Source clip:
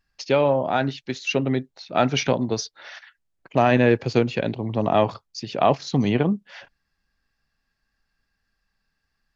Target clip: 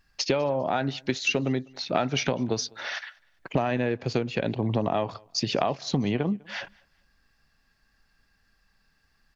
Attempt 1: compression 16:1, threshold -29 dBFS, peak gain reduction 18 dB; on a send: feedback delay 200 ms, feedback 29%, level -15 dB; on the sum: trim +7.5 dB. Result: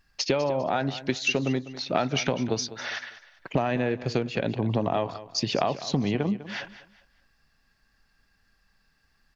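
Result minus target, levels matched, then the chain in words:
echo-to-direct +12 dB
compression 16:1, threshold -29 dBFS, peak gain reduction 18 dB; on a send: feedback delay 200 ms, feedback 29%, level -27 dB; on the sum: trim +7.5 dB

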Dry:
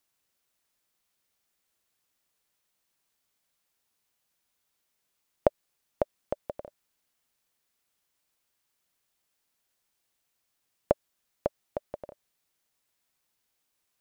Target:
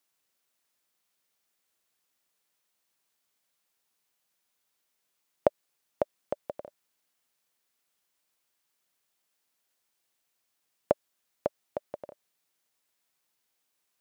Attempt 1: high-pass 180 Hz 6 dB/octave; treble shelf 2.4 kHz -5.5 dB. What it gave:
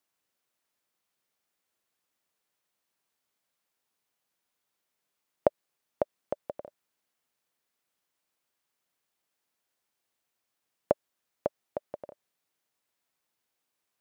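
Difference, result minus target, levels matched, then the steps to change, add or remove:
4 kHz band -3.5 dB
remove: treble shelf 2.4 kHz -5.5 dB

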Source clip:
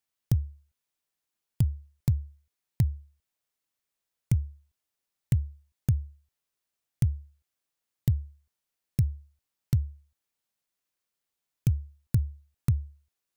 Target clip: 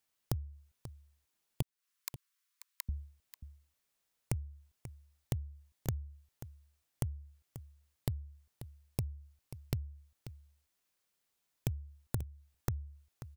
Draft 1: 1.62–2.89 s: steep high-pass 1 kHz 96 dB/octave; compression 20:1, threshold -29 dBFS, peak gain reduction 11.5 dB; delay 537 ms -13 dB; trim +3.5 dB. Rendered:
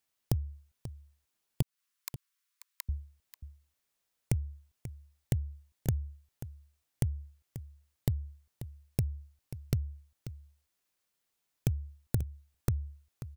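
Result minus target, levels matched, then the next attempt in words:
compression: peak gain reduction -6 dB
1.62–2.89 s: steep high-pass 1 kHz 96 dB/octave; compression 20:1, threshold -35.5 dBFS, peak gain reduction 17.5 dB; delay 537 ms -13 dB; trim +3.5 dB

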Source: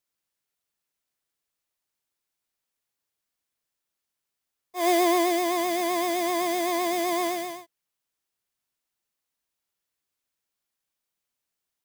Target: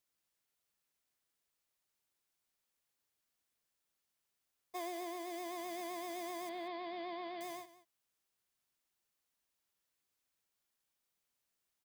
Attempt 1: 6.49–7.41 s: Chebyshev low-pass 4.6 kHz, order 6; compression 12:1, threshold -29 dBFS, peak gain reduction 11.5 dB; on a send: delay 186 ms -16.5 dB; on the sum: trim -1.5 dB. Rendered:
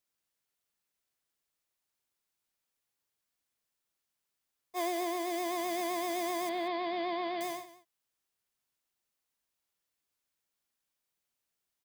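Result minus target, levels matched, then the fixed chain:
compression: peak gain reduction -9 dB
6.49–7.41 s: Chebyshev low-pass 4.6 kHz, order 6; compression 12:1, threshold -39 dBFS, peak gain reduction 21 dB; on a send: delay 186 ms -16.5 dB; on the sum: trim -1.5 dB

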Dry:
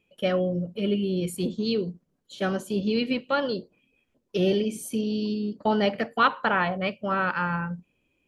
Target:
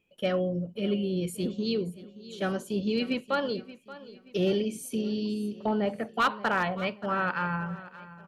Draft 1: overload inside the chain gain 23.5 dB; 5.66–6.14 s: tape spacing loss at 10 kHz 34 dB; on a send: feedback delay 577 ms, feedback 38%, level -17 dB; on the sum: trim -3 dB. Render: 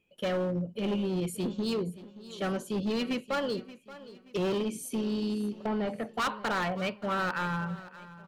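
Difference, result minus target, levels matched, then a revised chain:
overload inside the chain: distortion +12 dB
overload inside the chain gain 15.5 dB; 5.66–6.14 s: tape spacing loss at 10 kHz 34 dB; on a send: feedback delay 577 ms, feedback 38%, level -17 dB; on the sum: trim -3 dB

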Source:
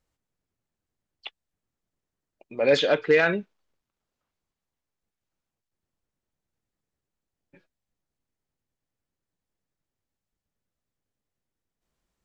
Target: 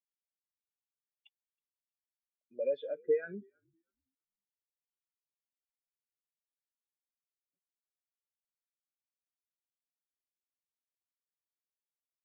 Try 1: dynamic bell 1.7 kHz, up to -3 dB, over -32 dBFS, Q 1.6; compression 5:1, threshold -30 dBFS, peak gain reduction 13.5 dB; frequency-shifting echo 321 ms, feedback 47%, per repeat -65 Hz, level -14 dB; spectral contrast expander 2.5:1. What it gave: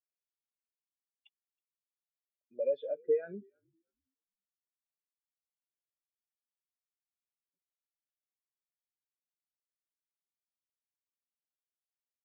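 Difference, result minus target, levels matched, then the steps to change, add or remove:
2 kHz band -8.5 dB
change: dynamic bell 660 Hz, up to -3 dB, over -32 dBFS, Q 1.6

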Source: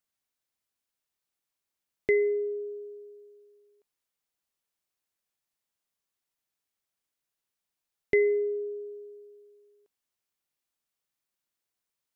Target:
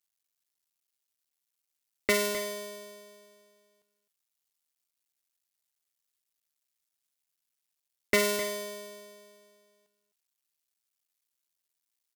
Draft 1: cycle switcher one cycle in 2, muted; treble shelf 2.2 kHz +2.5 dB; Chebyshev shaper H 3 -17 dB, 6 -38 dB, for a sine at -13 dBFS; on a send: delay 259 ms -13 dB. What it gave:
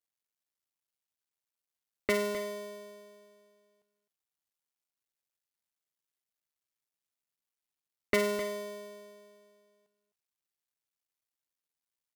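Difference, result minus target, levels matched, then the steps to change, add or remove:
4 kHz band -3.5 dB
change: treble shelf 2.2 kHz +12 dB

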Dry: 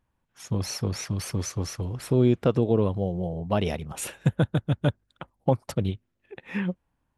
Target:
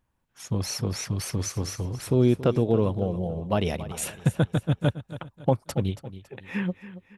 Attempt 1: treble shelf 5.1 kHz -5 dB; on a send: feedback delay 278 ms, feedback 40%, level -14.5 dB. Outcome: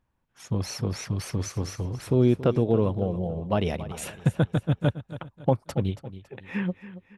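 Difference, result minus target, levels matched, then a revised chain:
8 kHz band -5.0 dB
treble shelf 5.1 kHz +3 dB; on a send: feedback delay 278 ms, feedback 40%, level -14.5 dB

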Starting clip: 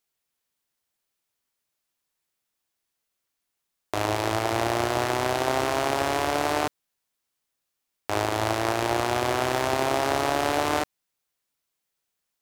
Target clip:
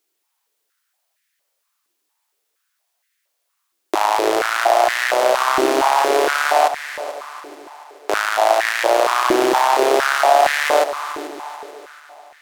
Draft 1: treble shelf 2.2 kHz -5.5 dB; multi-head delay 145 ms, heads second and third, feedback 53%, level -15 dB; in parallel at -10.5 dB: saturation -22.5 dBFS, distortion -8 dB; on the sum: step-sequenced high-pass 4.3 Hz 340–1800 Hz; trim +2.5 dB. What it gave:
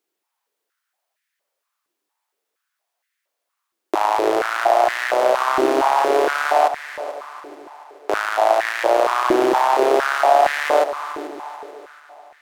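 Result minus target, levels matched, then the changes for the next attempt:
4 kHz band -5.0 dB
change: treble shelf 2.2 kHz +3.5 dB

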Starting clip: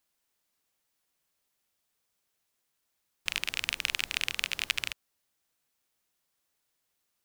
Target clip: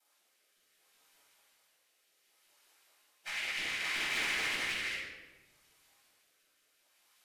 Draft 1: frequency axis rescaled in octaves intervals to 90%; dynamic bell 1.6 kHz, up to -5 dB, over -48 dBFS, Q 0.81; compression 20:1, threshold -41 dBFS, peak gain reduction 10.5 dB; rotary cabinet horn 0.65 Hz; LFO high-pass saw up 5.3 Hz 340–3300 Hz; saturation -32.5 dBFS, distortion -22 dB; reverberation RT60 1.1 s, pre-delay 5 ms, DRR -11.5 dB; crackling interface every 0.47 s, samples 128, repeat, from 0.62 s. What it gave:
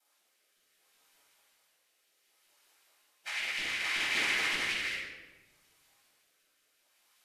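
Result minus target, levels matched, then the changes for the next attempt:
saturation: distortion -11 dB
change: saturation -42.5 dBFS, distortion -11 dB

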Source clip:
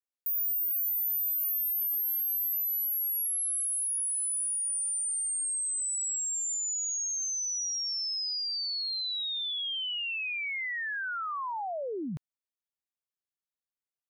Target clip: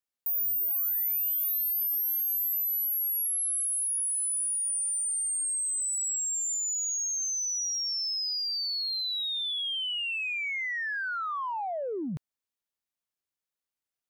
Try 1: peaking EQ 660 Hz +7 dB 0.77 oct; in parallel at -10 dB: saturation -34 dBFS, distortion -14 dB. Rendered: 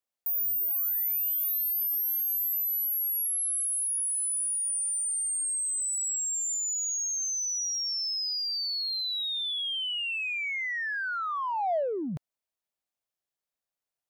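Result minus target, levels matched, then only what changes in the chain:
500 Hz band +4.0 dB
remove: peaking EQ 660 Hz +7 dB 0.77 oct

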